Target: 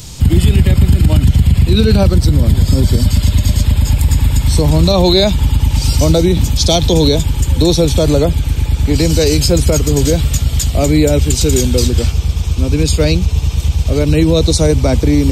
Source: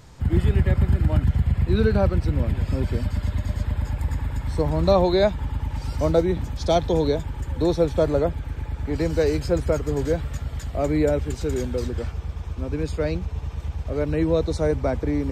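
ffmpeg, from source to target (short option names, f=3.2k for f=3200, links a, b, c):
-filter_complex "[0:a]asettb=1/sr,asplit=3[a][b][c];[a]atrim=end=2.074[d];[b]atrim=start=2.07:end=3.07,asetpts=PTS-STARTPTS,afade=t=in:d=0.004:c=qsin,afade=t=out:st=0.996:d=0.004:c=qsin,equalizer=f=2.6k:w=3.6:g=-10.5[e];[c]atrim=start=3.066[f];[d][e]acrossfade=d=0.004:c1=hsin:c2=qsin[g];[g][f]acrossfade=d=0.004:c1=qsin:c2=hsin,acrossover=split=310|3300[h][i][j];[h]acontrast=90[k];[k][i][j]amix=inputs=3:normalize=0,aexciter=amount=4.6:drive=6.4:freq=2.5k,alimiter=level_in=9.5dB:limit=-1dB:release=50:level=0:latency=1,volume=-1dB"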